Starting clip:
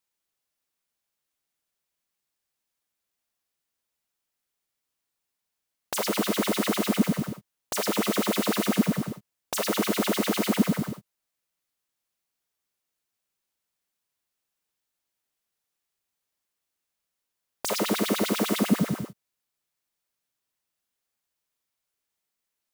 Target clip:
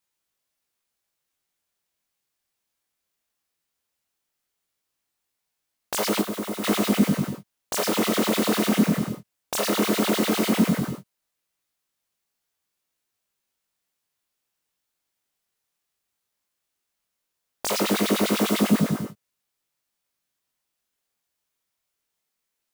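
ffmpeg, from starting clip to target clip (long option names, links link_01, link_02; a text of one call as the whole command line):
ffmpeg -i in.wav -filter_complex "[0:a]flanger=delay=19:depth=5.1:speed=0.16,asettb=1/sr,asplit=3[link_01][link_02][link_03];[link_01]atrim=end=6.214[link_04];[link_02]atrim=start=6.21:end=6.64,asetpts=PTS-STARTPTS,afade=type=in:duration=0.004:curve=qsin,afade=type=out:start_time=0.426:duration=0.004:curve=qsin,acrossover=split=1600|7100[link_05][link_06][link_07];[link_05]acompressor=threshold=-34dB:ratio=4[link_08];[link_06]acompressor=threshold=-51dB:ratio=4[link_09];[link_07]acompressor=threshold=-46dB:ratio=4[link_10];[link_08][link_09][link_10]amix=inputs=3:normalize=0[link_11];[link_03]atrim=start=6.636[link_12];[link_04][link_11]acrossfade=duration=0.004:curve1=hsin:curve2=qsin[link_13];[link_13][link_12]acrossfade=duration=0.004:curve1=qsin:curve2=hsin,volume=6dB" out.wav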